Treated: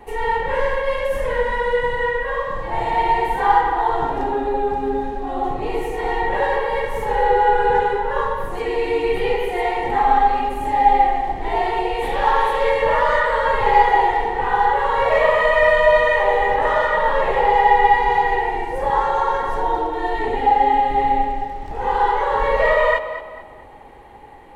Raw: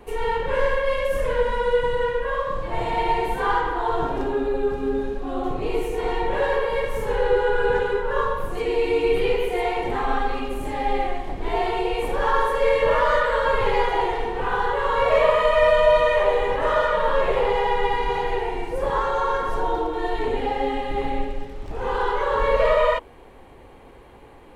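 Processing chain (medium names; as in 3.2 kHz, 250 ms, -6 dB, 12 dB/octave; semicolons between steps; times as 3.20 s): 12.02–12.70 s: band noise 1.6–3.8 kHz -39 dBFS; small resonant body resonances 830/1900 Hz, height 14 dB, ringing for 40 ms; tape echo 223 ms, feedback 39%, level -11 dB, low-pass 4.7 kHz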